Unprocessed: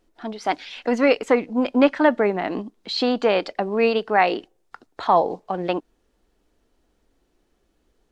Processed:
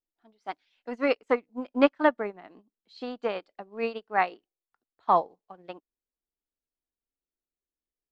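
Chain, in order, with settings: dynamic bell 1.2 kHz, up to +5 dB, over -35 dBFS, Q 2.8; upward expansion 2.5:1, over -31 dBFS; trim -3 dB

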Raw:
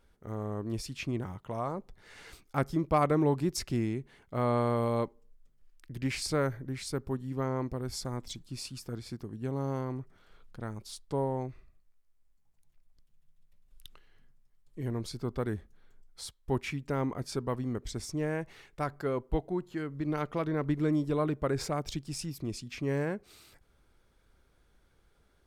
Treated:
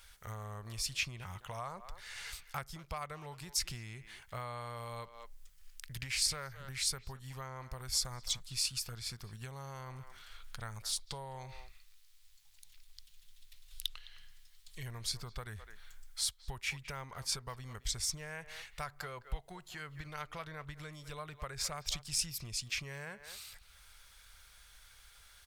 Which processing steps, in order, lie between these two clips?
10.99–14.83 s: peaking EQ 3.8 kHz +8.5 dB 1.1 oct; speakerphone echo 210 ms, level -17 dB; compression 16:1, threshold -35 dBFS, peak gain reduction 15 dB; amplifier tone stack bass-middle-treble 10-0-10; tape noise reduction on one side only encoder only; trim +10 dB

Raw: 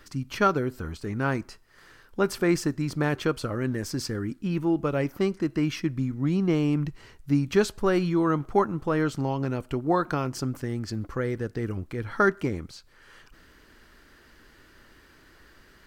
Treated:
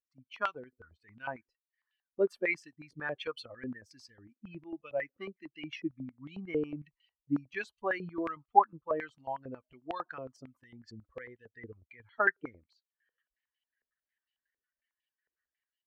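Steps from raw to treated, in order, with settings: expander on every frequency bin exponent 2; level rider gain up to 9 dB; step-sequenced band-pass 11 Hz 470–2900 Hz

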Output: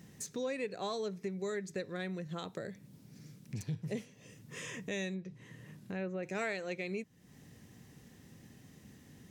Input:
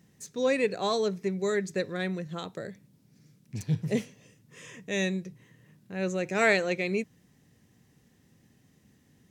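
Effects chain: 5.13–6.23 s: low-pass that closes with the level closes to 2 kHz, closed at -27 dBFS; compression 3:1, threshold -47 dBFS, peak gain reduction 21 dB; trim +6 dB

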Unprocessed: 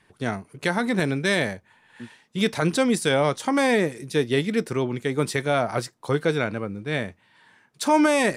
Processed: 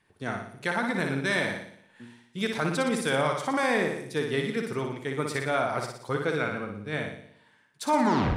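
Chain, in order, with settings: tape stop on the ending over 0.43 s; flutter echo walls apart 10.1 m, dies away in 0.73 s; dynamic bell 1.3 kHz, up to +6 dB, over -35 dBFS, Q 0.95; trim -8 dB

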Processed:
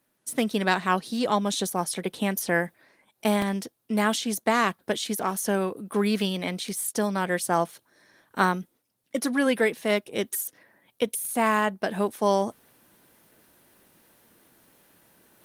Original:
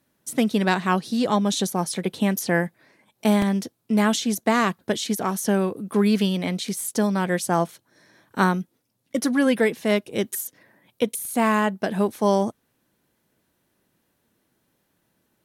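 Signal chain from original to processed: bass shelf 280 Hz -9 dB; reverse; upward compressor, threshold -45 dBFS; reverse; Opus 32 kbps 48 kHz

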